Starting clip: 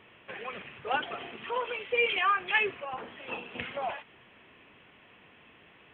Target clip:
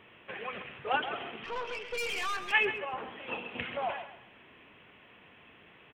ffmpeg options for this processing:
-filter_complex "[0:a]asplit=3[a][b][c];[a]afade=t=out:st=1.43:d=0.02[d];[b]aeval=exprs='(tanh(39.8*val(0)+0.5)-tanh(0.5))/39.8':c=same,afade=t=in:st=1.43:d=0.02,afade=t=out:st=2.51:d=0.02[e];[c]afade=t=in:st=2.51:d=0.02[f];[d][e][f]amix=inputs=3:normalize=0,asplit=2[g][h];[h]aecho=0:1:133|266|399:0.282|0.0789|0.0221[i];[g][i]amix=inputs=2:normalize=0"

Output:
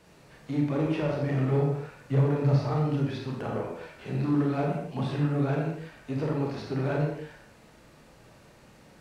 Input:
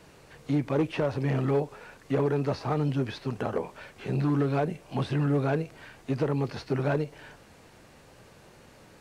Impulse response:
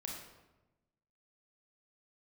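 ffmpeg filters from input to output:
-filter_complex "[0:a]asettb=1/sr,asplit=3[a][b][c];[a]atrim=end=1.514[d];[b]atrim=start=1.51:end=2.59,asetpts=PTS-STARTPTS,afade=t=in:d=0.004:c=qsin,afade=t=out:st=1.076:d=0.004:c=qsin,equalizer=f=130:w=3.6:g=12.5[e];[c]atrim=start=2.586[f];[d][e]acrossfade=d=0.004:c1=hsin:c2=qsin[g];[g][f]acrossfade=d=0.004:c1=qsin:c2=hsin[h];[1:a]atrim=start_sample=2205,afade=t=out:st=0.31:d=0.01,atrim=end_sample=14112[i];[h][i]afir=irnorm=-1:irlink=0"

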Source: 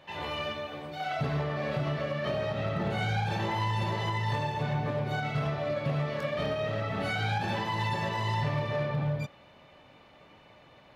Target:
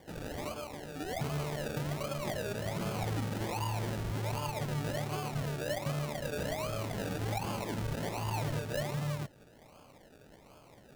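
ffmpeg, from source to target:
-filter_complex "[0:a]asplit=2[a][b];[b]acompressor=threshold=-43dB:ratio=6,volume=-2.5dB[c];[a][c]amix=inputs=2:normalize=0,acrusher=samples=33:mix=1:aa=0.000001:lfo=1:lforange=19.8:lforate=1.3,volume=-6dB"

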